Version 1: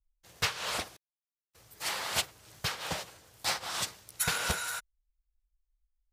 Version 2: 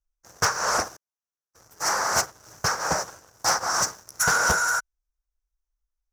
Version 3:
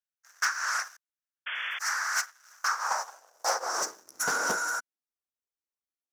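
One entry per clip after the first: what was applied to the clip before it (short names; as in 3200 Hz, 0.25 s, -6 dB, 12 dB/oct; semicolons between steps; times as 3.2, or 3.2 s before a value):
EQ curve 110 Hz 0 dB, 1500 Hz +8 dB, 3400 Hz -23 dB, 5800 Hz +11 dB, 8800 Hz -4 dB; sample leveller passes 2
painted sound noise, 1.46–1.79, 360–3500 Hz -30 dBFS; high-pass sweep 1600 Hz -> 270 Hz, 2.44–4.15; gain -7.5 dB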